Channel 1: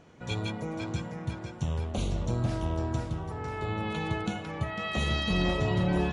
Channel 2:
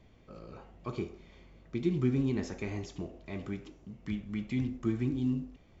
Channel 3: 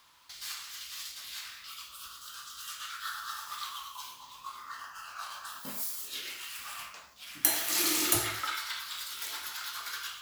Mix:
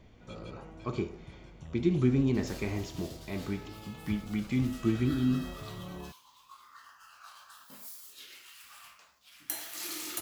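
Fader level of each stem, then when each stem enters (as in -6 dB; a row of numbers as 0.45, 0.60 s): -16.5, +3.0, -10.5 dB; 0.00, 0.00, 2.05 s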